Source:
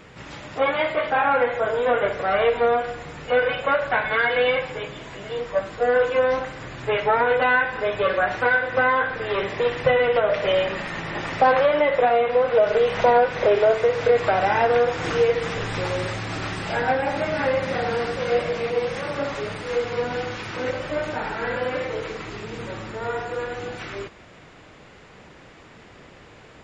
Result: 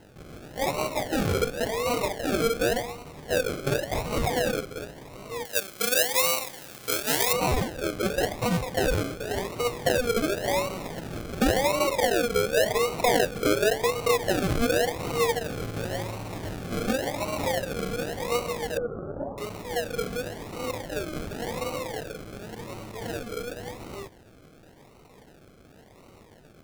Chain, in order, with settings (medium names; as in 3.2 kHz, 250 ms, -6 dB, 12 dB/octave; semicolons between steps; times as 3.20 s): decimation with a swept rate 37×, swing 60% 0.91 Hz; 5.45–7.33 s: tilt EQ +3.5 dB/octave; 18.77–19.38 s: elliptic low-pass 1.3 kHz, stop band 40 dB; trim -5.5 dB